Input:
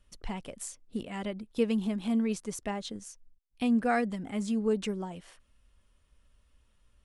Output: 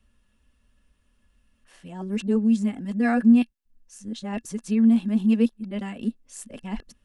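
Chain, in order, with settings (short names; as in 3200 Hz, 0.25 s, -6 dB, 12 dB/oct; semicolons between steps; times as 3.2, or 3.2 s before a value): whole clip reversed; small resonant body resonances 230/1700/2700 Hz, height 11 dB, ringing for 55 ms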